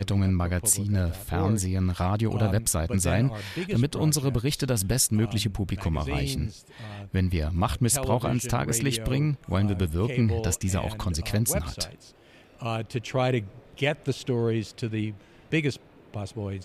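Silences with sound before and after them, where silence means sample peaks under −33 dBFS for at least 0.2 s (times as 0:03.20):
0:06.50–0:06.80
0:11.87–0:12.62
0:13.46–0:13.78
0:15.11–0:15.52
0:15.76–0:16.14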